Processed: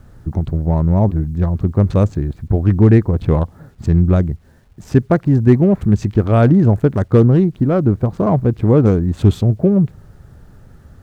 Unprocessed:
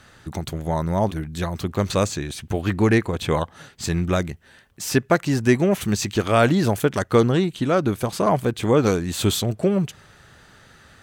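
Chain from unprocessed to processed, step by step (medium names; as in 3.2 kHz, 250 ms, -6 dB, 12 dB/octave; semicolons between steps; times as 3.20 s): local Wiener filter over 15 samples; tilt EQ -4 dB/octave; word length cut 10-bit, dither none; trim -1 dB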